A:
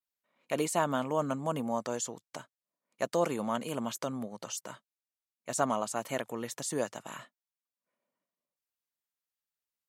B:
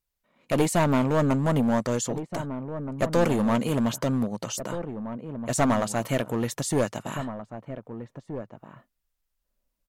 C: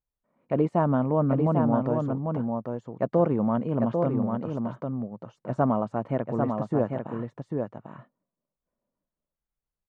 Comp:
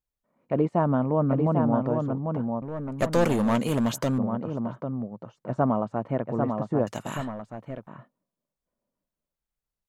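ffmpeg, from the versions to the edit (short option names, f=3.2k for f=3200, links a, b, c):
-filter_complex "[1:a]asplit=2[a][b];[2:a]asplit=3[c][d][e];[c]atrim=end=2.622[f];[a]atrim=start=2.618:end=4.182[g];[d]atrim=start=4.178:end=6.872[h];[b]atrim=start=6.868:end=7.872[i];[e]atrim=start=7.868[j];[f][g]acrossfade=d=0.004:c1=hsin:c2=hsin[k];[k][h]acrossfade=d=0.004:c1=hsin:c2=hsin[l];[l][i]acrossfade=d=0.004:c1=hsin:c2=hsin[m];[m][j]acrossfade=d=0.004:c1=hsin:c2=hsin"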